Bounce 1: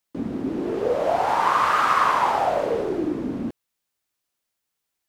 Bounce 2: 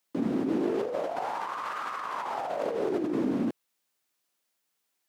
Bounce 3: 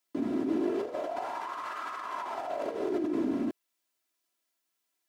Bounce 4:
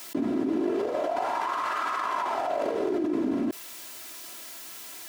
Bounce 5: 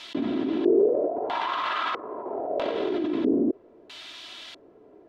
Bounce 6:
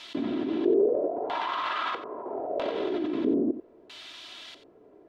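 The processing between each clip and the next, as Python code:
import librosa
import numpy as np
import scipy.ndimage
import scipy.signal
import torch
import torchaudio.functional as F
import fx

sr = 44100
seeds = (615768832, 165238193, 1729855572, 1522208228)

y1 = scipy.signal.sosfilt(scipy.signal.butter(2, 170.0, 'highpass', fs=sr, output='sos'), x)
y1 = fx.over_compress(y1, sr, threshold_db=-28.0, ratio=-1.0)
y1 = y1 * 10.0 ** (-3.0 / 20.0)
y2 = y1 + 0.56 * np.pad(y1, (int(3.0 * sr / 1000.0), 0))[:len(y1)]
y2 = y2 * 10.0 ** (-4.0 / 20.0)
y3 = fx.env_flatten(y2, sr, amount_pct=70)
y3 = y3 * 10.0 ** (1.0 / 20.0)
y4 = fx.filter_lfo_lowpass(y3, sr, shape='square', hz=0.77, low_hz=450.0, high_hz=3500.0, q=3.6)
y5 = y4 + 10.0 ** (-12.5 / 20.0) * np.pad(y4, (int(90 * sr / 1000.0), 0))[:len(y4)]
y5 = y5 * 10.0 ** (-2.5 / 20.0)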